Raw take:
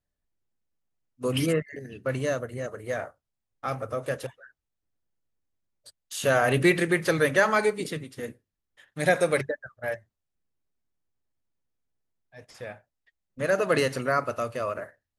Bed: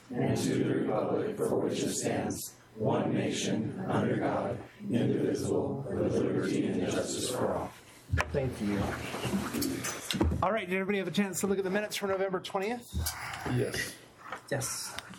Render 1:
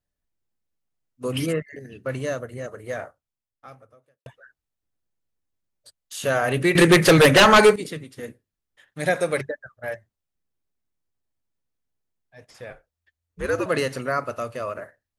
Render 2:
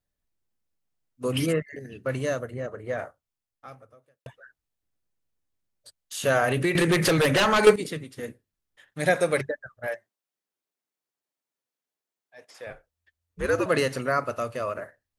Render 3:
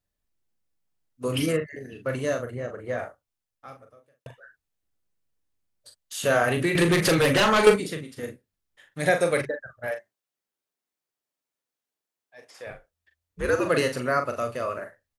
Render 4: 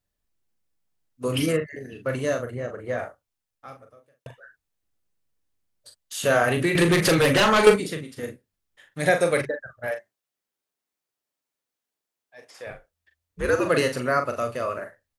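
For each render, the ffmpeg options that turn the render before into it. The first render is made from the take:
ffmpeg -i in.wav -filter_complex "[0:a]asettb=1/sr,asplit=3[link_01][link_02][link_03];[link_01]atrim=end=6.754[link_04];[link_02]atrim=start=6.75:end=7.76,asetpts=PTS-STARTPTS,afade=type=in:duration=0.004:curve=qsin,afade=type=out:start_time=1.006:duration=0.004:curve=qsin,aeval=exprs='0.398*sin(PI/2*3.16*val(0)/0.398)':channel_layout=same[link_05];[link_03]atrim=start=7.756[link_06];[link_04][link_05]acrossfade=duration=0.004:curve1=hsin:curve2=qsin[link_07];[link_07][link_06]acrossfade=duration=0.004:curve1=qsin:curve2=hsin,asettb=1/sr,asplit=3[link_08][link_09][link_10];[link_08]atrim=end=12.704[link_11];[link_09]atrim=start=12.7:end=13.66,asetpts=PTS-STARTPTS,afade=type=in:duration=0.004:curve=qsin,afade=type=out:start_time=0.956:duration=0.004:curve=qsin,afreqshift=-85[link_12];[link_10]atrim=start=13.656[link_13];[link_11][link_12]acrossfade=duration=0.004:curve1=hsin:curve2=qsin[link_14];[link_14][link_13]acrossfade=duration=0.004:curve1=qsin:curve2=hsin,asplit=2[link_15][link_16];[link_15]atrim=end=4.26,asetpts=PTS-STARTPTS,afade=type=out:start_time=3.01:duration=1.25:curve=qua[link_17];[link_16]atrim=start=4.26,asetpts=PTS-STARTPTS,afade=type=in:duration=0.004:curve=hsin[link_18];[link_17][link_18]concat=n=2:v=0:a=1" out.wav
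ffmpeg -i in.wav -filter_complex "[0:a]asplit=3[link_01][link_02][link_03];[link_01]afade=type=out:start_time=2.5:duration=0.02[link_04];[link_02]aemphasis=mode=reproduction:type=75fm,afade=type=in:start_time=2.5:duration=0.02,afade=type=out:start_time=2.97:duration=0.02[link_05];[link_03]afade=type=in:start_time=2.97:duration=0.02[link_06];[link_04][link_05][link_06]amix=inputs=3:normalize=0,asettb=1/sr,asplit=3[link_07][link_08][link_09];[link_07]atrim=end=6.444[link_10];[link_08]atrim=start=6.44:end=7.67,asetpts=PTS-STARTPTS,afade=type=in:duration=0.004:curve=qsin,afade=type=out:start_time=1.226:duration=0.004:curve=qsin,acompressor=threshold=-19dB:ratio=5:attack=3.2:release=140:knee=1:detection=peak[link_11];[link_09]atrim=start=7.666[link_12];[link_10][link_11]acrossfade=duration=0.004:curve1=hsin:curve2=qsin[link_13];[link_13][link_12]acrossfade=duration=0.004:curve1=qsin:curve2=hsin,asettb=1/sr,asplit=3[link_14][link_15][link_16];[link_14]atrim=end=9.874[link_17];[link_15]atrim=start=9.87:end=12.67,asetpts=PTS-STARTPTS,afade=type=in:duration=0.004:curve=qsin,afade=type=out:start_time=2.796:duration=0.004:curve=qsin,highpass=360[link_18];[link_16]atrim=start=12.666[link_19];[link_17][link_18]acrossfade=duration=0.004:curve1=hsin:curve2=qsin[link_20];[link_20][link_19]acrossfade=duration=0.004:curve1=qsin:curve2=hsin" out.wav
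ffmpeg -i in.wav -filter_complex "[0:a]asplit=2[link_01][link_02];[link_02]adelay=41,volume=-7dB[link_03];[link_01][link_03]amix=inputs=2:normalize=0" out.wav
ffmpeg -i in.wav -af "volume=1.5dB" out.wav

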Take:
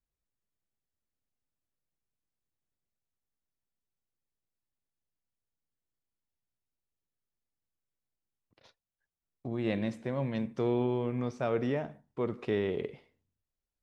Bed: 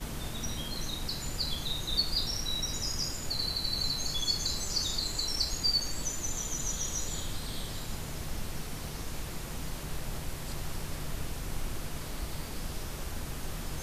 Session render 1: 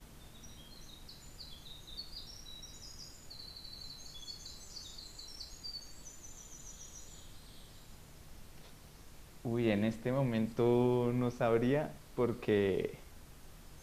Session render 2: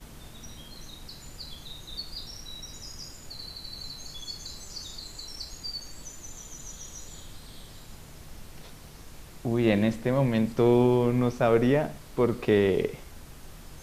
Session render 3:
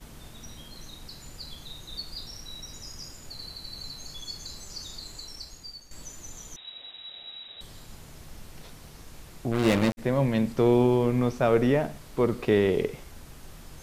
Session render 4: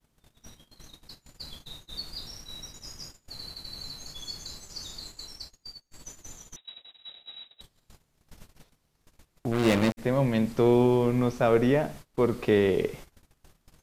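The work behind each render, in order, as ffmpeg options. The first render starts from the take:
ffmpeg -i in.wav -i bed.wav -filter_complex "[1:a]volume=-17dB[link_01];[0:a][link_01]amix=inputs=2:normalize=0" out.wav
ffmpeg -i in.wav -af "volume=8.5dB" out.wav
ffmpeg -i in.wav -filter_complex "[0:a]asettb=1/sr,asplit=3[link_01][link_02][link_03];[link_01]atrim=end=6.564[link_04];[link_02]atrim=start=6.56:end=7.61,asetpts=PTS-STARTPTS,afade=type=in:duration=0.004:curve=qsin,afade=type=out:start_time=1.046:duration=0.004:curve=qsin,lowpass=frequency=3300:width_type=q:width=0.5098,lowpass=frequency=3300:width_type=q:width=0.6013,lowpass=frequency=3300:width_type=q:width=0.9,lowpass=frequency=3300:width_type=q:width=2.563,afreqshift=-3900[link_05];[link_03]atrim=start=7.606[link_06];[link_04][link_05]acrossfade=duration=0.004:curve1=hsin:curve2=qsin[link_07];[link_07][link_06]acrossfade=duration=0.004:curve1=qsin:curve2=hsin,asplit=3[link_08][link_09][link_10];[link_08]afade=type=out:start_time=9.51:duration=0.02[link_11];[link_09]acrusher=bits=3:mix=0:aa=0.5,afade=type=in:start_time=9.51:duration=0.02,afade=type=out:start_time=9.97:duration=0.02[link_12];[link_10]afade=type=in:start_time=9.97:duration=0.02[link_13];[link_11][link_12][link_13]amix=inputs=3:normalize=0,asplit=2[link_14][link_15];[link_14]atrim=end=5.91,asetpts=PTS-STARTPTS,afade=type=out:start_time=5.14:duration=0.77:silence=0.266073[link_16];[link_15]atrim=start=5.91,asetpts=PTS-STARTPTS,afade=type=in:duration=0.004:curve=hsin:silence=0.266073[link_17];[link_16][link_17]concat=n=2:v=0:a=1" out.wav
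ffmpeg -i in.wav -af "lowshelf=frequency=100:gain=-2.5,agate=range=-25dB:threshold=-42dB:ratio=16:detection=peak" out.wav

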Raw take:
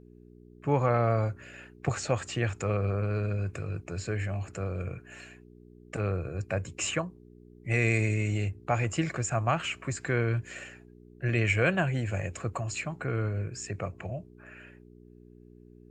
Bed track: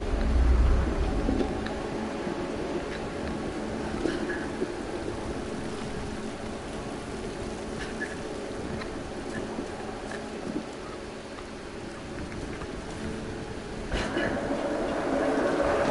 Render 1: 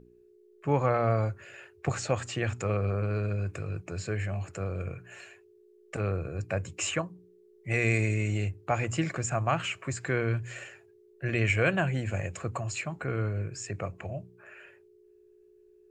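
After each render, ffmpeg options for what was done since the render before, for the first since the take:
ffmpeg -i in.wav -af "bandreject=frequency=60:width_type=h:width=4,bandreject=frequency=120:width_type=h:width=4,bandreject=frequency=180:width_type=h:width=4,bandreject=frequency=240:width_type=h:width=4,bandreject=frequency=300:width_type=h:width=4" out.wav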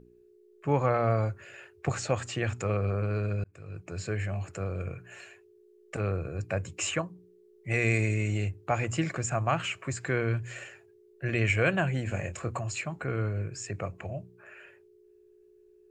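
ffmpeg -i in.wav -filter_complex "[0:a]asettb=1/sr,asplit=3[link_01][link_02][link_03];[link_01]atrim=end=12.034[link_04];[link_02]atrim=start=12.03:end=12.59,asetpts=PTS-STARTPTS,afade=type=in:duration=0.004:curve=qsin,afade=type=out:start_time=0.556:duration=0.004:curve=qsin,asplit=2[link_05][link_06];[link_06]adelay=25,volume=-9dB[link_07];[link_05][link_07]amix=inputs=2:normalize=0,atrim=end_sample=24696[link_08];[link_03]atrim=start=12.586[link_09];[link_04][link_08]acrossfade=duration=0.004:curve1=hsin:curve2=qsin[link_10];[link_10][link_09]acrossfade=duration=0.004:curve1=qsin:curve2=hsin,asplit=2[link_11][link_12];[link_11]atrim=end=3.44,asetpts=PTS-STARTPTS,afade=type=out:start_time=3.436:duration=0.004:curve=hsin[link_13];[link_12]atrim=start=3.44,asetpts=PTS-STARTPTS,afade=type=in:duration=0.59[link_14];[link_13][link_14]concat=n=2:v=0:a=1" out.wav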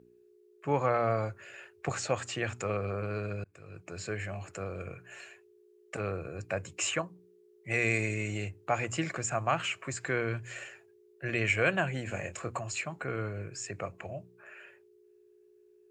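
ffmpeg -i in.wav -af "highpass=86,lowshelf=frequency=280:gain=-7" out.wav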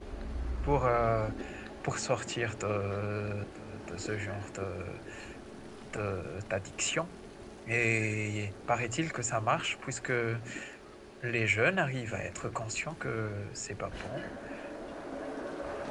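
ffmpeg -i in.wav -i bed.wav -filter_complex "[1:a]volume=-13.5dB[link_01];[0:a][link_01]amix=inputs=2:normalize=0" out.wav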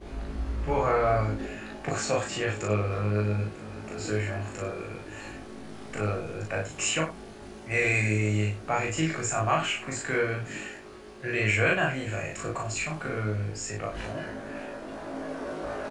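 ffmpeg -i in.wav -filter_complex "[0:a]asplit=2[link_01][link_02];[link_02]adelay=19,volume=-5.5dB[link_03];[link_01][link_03]amix=inputs=2:normalize=0,asplit=2[link_04][link_05];[link_05]aecho=0:1:37.9|96.21:1|0.282[link_06];[link_04][link_06]amix=inputs=2:normalize=0" out.wav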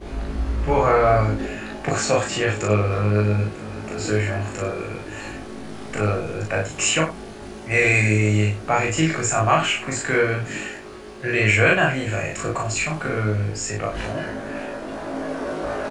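ffmpeg -i in.wav -af "volume=7.5dB" out.wav

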